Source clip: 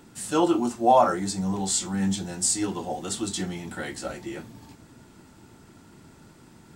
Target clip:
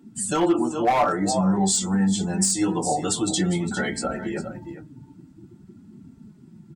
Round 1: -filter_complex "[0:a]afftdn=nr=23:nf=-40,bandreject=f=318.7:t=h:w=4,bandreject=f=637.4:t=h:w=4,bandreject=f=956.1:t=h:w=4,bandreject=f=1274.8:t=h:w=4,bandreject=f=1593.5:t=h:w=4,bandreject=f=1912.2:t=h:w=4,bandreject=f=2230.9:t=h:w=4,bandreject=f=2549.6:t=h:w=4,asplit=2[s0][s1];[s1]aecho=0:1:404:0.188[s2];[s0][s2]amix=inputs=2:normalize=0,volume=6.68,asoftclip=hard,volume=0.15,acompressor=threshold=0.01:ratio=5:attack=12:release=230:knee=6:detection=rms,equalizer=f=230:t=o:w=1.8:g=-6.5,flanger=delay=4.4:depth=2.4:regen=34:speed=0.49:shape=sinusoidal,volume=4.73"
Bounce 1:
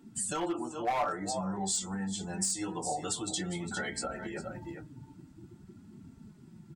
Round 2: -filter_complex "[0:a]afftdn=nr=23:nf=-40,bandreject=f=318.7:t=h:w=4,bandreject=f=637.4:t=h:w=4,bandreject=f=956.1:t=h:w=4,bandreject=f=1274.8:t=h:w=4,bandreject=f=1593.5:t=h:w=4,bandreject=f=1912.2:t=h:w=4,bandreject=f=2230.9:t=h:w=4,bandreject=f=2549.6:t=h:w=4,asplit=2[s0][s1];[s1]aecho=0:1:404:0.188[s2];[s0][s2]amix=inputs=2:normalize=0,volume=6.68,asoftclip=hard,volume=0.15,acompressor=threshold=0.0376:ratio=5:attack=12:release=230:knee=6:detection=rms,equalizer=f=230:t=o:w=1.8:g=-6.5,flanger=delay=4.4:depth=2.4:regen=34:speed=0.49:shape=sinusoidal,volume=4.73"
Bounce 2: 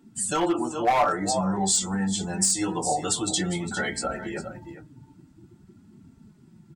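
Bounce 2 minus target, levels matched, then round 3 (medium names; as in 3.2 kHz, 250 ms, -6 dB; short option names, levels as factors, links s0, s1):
250 Hz band -3.5 dB
-filter_complex "[0:a]afftdn=nr=23:nf=-40,bandreject=f=318.7:t=h:w=4,bandreject=f=637.4:t=h:w=4,bandreject=f=956.1:t=h:w=4,bandreject=f=1274.8:t=h:w=4,bandreject=f=1593.5:t=h:w=4,bandreject=f=1912.2:t=h:w=4,bandreject=f=2230.9:t=h:w=4,bandreject=f=2549.6:t=h:w=4,asplit=2[s0][s1];[s1]aecho=0:1:404:0.188[s2];[s0][s2]amix=inputs=2:normalize=0,volume=6.68,asoftclip=hard,volume=0.15,acompressor=threshold=0.0376:ratio=5:attack=12:release=230:knee=6:detection=rms,flanger=delay=4.4:depth=2.4:regen=34:speed=0.49:shape=sinusoidal,volume=4.73"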